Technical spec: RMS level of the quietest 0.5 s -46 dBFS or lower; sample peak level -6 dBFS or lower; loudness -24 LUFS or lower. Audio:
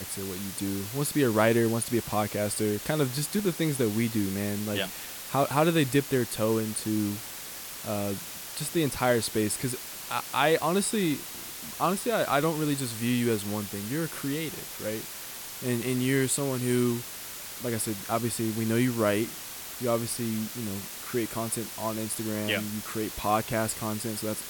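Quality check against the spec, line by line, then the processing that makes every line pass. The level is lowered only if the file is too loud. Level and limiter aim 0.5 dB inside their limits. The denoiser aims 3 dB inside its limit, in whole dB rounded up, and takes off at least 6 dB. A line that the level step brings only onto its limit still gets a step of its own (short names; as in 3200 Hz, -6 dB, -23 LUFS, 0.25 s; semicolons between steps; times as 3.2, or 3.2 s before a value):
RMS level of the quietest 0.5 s -40 dBFS: fail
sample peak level -9.5 dBFS: OK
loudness -28.5 LUFS: OK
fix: denoiser 9 dB, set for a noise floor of -40 dBFS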